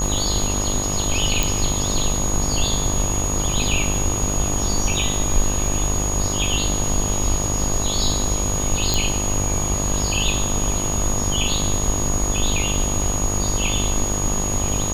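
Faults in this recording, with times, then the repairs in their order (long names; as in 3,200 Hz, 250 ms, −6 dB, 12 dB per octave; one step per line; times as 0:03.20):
mains buzz 50 Hz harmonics 25 −26 dBFS
surface crackle 20 per second −26 dBFS
whistle 6,700 Hz −24 dBFS
0:01.43: click
0:08.94: click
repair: click removal
hum removal 50 Hz, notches 25
notch filter 6,700 Hz, Q 30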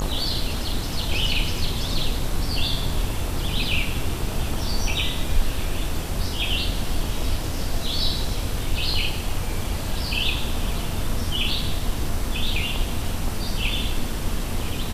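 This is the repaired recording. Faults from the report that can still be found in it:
none of them is left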